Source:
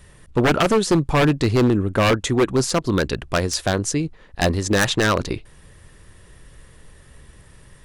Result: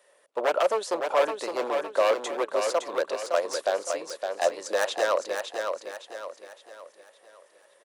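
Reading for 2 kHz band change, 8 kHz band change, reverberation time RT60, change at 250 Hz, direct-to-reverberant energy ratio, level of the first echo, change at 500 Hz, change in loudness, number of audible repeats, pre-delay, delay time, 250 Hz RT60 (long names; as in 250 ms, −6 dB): −8.5 dB, −10.0 dB, no reverb audible, −21.5 dB, no reverb audible, −5.5 dB, −3.0 dB, −7.5 dB, 4, no reverb audible, 562 ms, no reverb audible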